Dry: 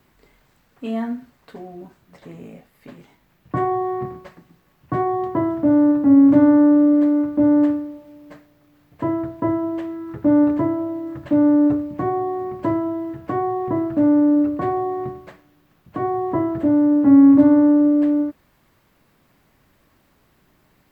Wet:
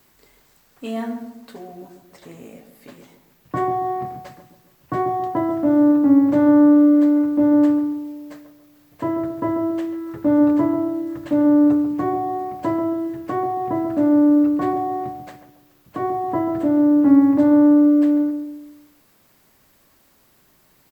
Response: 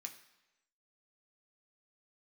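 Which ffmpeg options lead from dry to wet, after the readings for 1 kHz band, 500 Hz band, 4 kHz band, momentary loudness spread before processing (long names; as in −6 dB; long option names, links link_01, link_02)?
+1.5 dB, 0.0 dB, can't be measured, 16 LU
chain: -filter_complex "[0:a]bass=frequency=250:gain=-5,treble=frequency=4000:gain=10,asplit=2[link_01][link_02];[link_02]adelay=139,lowpass=frequency=950:poles=1,volume=-7dB,asplit=2[link_03][link_04];[link_04]adelay=139,lowpass=frequency=950:poles=1,volume=0.46,asplit=2[link_05][link_06];[link_06]adelay=139,lowpass=frequency=950:poles=1,volume=0.46,asplit=2[link_07][link_08];[link_08]adelay=139,lowpass=frequency=950:poles=1,volume=0.46,asplit=2[link_09][link_10];[link_10]adelay=139,lowpass=frequency=950:poles=1,volume=0.46[link_11];[link_03][link_05][link_07][link_09][link_11]amix=inputs=5:normalize=0[link_12];[link_01][link_12]amix=inputs=2:normalize=0"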